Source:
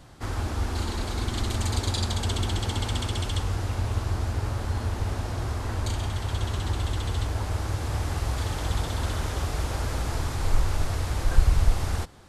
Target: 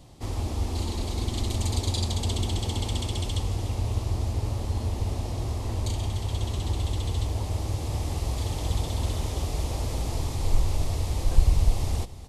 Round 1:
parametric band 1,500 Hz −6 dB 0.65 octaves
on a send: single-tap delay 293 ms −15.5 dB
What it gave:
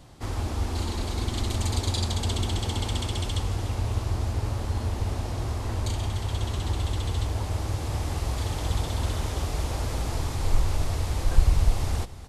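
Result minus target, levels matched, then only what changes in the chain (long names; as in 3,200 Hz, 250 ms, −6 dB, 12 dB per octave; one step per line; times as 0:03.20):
2,000 Hz band +4.5 dB
change: parametric band 1,500 Hz −16.5 dB 0.65 octaves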